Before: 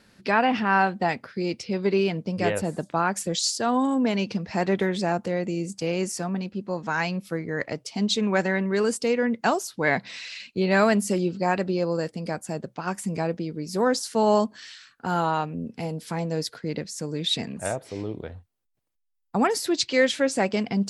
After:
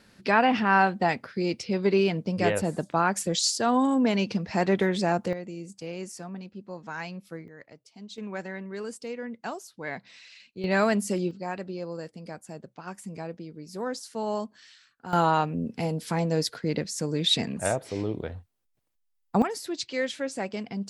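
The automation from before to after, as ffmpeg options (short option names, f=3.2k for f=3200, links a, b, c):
-af "asetnsamples=n=441:p=0,asendcmd='5.33 volume volume -10dB;7.48 volume volume -19.5dB;8.18 volume volume -12.5dB;10.64 volume volume -3.5dB;11.31 volume volume -10dB;15.13 volume volume 2dB;19.42 volume volume -8.5dB',volume=0dB"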